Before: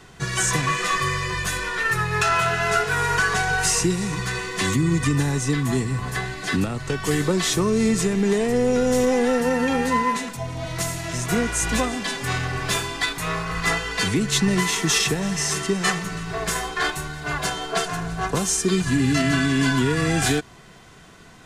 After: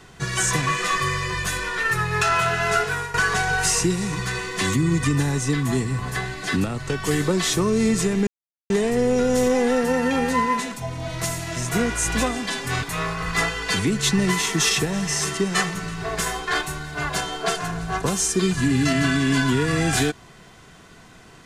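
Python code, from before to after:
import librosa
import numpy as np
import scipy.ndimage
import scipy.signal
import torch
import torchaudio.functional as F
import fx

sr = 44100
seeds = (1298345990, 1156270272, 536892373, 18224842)

y = fx.edit(x, sr, fx.fade_out_to(start_s=2.84, length_s=0.3, floor_db=-15.5),
    fx.insert_silence(at_s=8.27, length_s=0.43),
    fx.cut(start_s=12.4, length_s=0.72), tone=tone)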